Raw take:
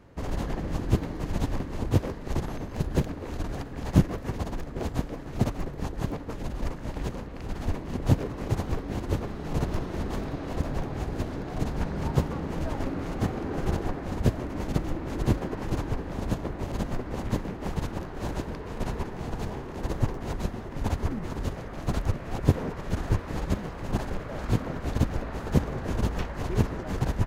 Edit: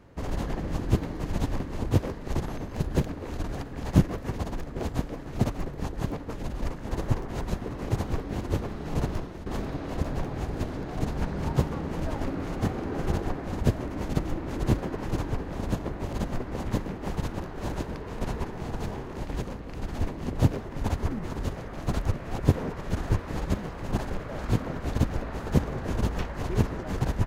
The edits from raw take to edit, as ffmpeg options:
ffmpeg -i in.wav -filter_complex "[0:a]asplit=6[link_01][link_02][link_03][link_04][link_05][link_06];[link_01]atrim=end=6.872[link_07];[link_02]atrim=start=19.788:end=20.582[link_08];[link_03]atrim=start=8.248:end=10.05,asetpts=PTS-STARTPTS,afade=type=out:start_time=1.402:duration=0.4:silence=0.223872[link_09];[link_04]atrim=start=10.05:end=19.792,asetpts=PTS-STARTPTS,afade=type=in:duration=0.004:curve=hsin:silence=0.223872[link_10];[link_05]atrim=start=6.868:end=8.252[link_11];[link_06]atrim=start=20.578[link_12];[link_07][link_08]acrossfade=duration=0.004:curve1=hsin:curve2=hsin[link_13];[link_09][link_10]concat=n=2:v=0:a=1[link_14];[link_13][link_14]acrossfade=duration=0.004:curve1=hsin:curve2=hsin[link_15];[link_15][link_11]acrossfade=duration=0.004:curve1=hsin:curve2=hsin[link_16];[link_16][link_12]acrossfade=duration=0.004:curve1=hsin:curve2=hsin" out.wav

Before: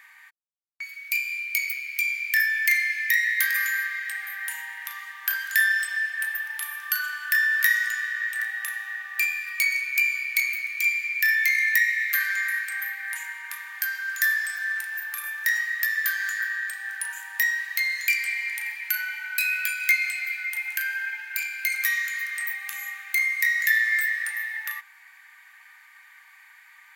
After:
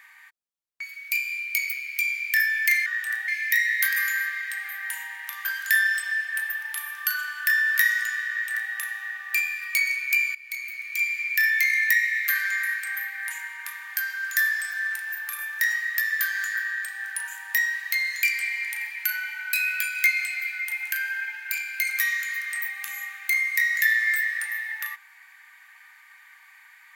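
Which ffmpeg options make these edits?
ffmpeg -i in.wav -filter_complex "[0:a]asplit=5[link_01][link_02][link_03][link_04][link_05];[link_01]atrim=end=2.862[link_06];[link_02]atrim=start=8.148:end=8.572[link_07];[link_03]atrim=start=2.858:end=5.032[link_08];[link_04]atrim=start=5.298:end=10.2,asetpts=PTS-STARTPTS,afade=type=out:start_time=4.898:duration=0.004:curve=hsin:silence=0.125893[link_09];[link_05]atrim=start=10.2,asetpts=PTS-STARTPTS,afade=type=in:duration=0.88:silence=0.125893[link_10];[link_06][link_07]acrossfade=duration=0.004:curve1=hsin:curve2=hsin[link_11];[link_11][link_08]acrossfade=duration=0.004:curve1=hsin:curve2=hsin[link_12];[link_09][link_10]concat=n=2:v=0:a=1[link_13];[link_12][link_13]acrossfade=duration=0.004:curve1=hsin:curve2=hsin" out.wav

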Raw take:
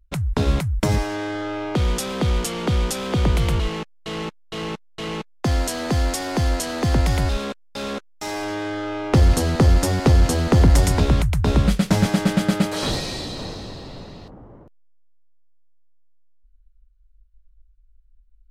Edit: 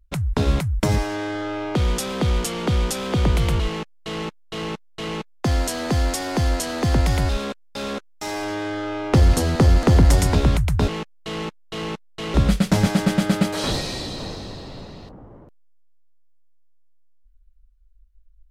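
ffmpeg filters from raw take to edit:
ffmpeg -i in.wav -filter_complex "[0:a]asplit=4[link_01][link_02][link_03][link_04];[link_01]atrim=end=9.832[link_05];[link_02]atrim=start=10.478:end=11.532[link_06];[link_03]atrim=start=3.678:end=5.142[link_07];[link_04]atrim=start=11.528[link_08];[link_05][link_06]acrossfade=duration=0.004:curve1=hsin:curve2=hsin[link_09];[link_09][link_07]acrossfade=duration=0.004:curve1=hsin:curve2=hsin[link_10];[link_10][link_08]acrossfade=duration=0.004:curve1=hsin:curve2=hsin" out.wav

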